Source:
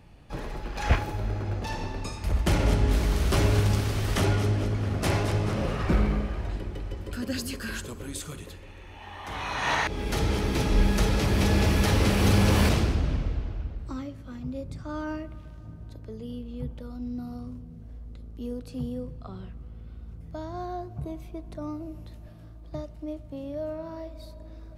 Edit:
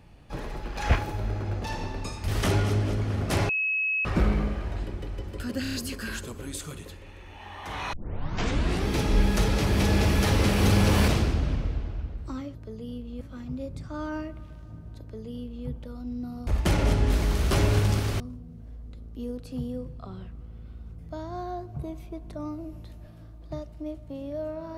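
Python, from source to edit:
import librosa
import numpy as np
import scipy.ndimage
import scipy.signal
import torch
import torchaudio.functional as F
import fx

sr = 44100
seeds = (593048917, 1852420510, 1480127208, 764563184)

y = fx.edit(x, sr, fx.move(start_s=2.28, length_s=1.73, to_s=17.42),
    fx.bleep(start_s=5.22, length_s=0.56, hz=2570.0, db=-23.5),
    fx.stutter(start_s=7.35, slice_s=0.03, count=5),
    fx.tape_start(start_s=9.54, length_s=0.95),
    fx.duplicate(start_s=15.96, length_s=0.66, to_s=14.16), tone=tone)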